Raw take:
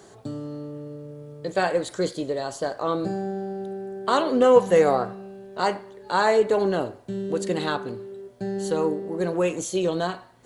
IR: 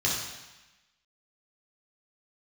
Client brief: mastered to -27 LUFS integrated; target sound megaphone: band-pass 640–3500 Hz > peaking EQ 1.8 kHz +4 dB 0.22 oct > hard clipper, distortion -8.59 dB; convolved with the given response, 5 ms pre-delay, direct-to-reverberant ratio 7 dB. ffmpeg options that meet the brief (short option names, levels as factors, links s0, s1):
-filter_complex "[0:a]asplit=2[s0][s1];[1:a]atrim=start_sample=2205,adelay=5[s2];[s1][s2]afir=irnorm=-1:irlink=0,volume=0.133[s3];[s0][s3]amix=inputs=2:normalize=0,highpass=640,lowpass=3500,equalizer=f=1800:t=o:w=0.22:g=4,asoftclip=type=hard:threshold=0.0841,volume=1.41"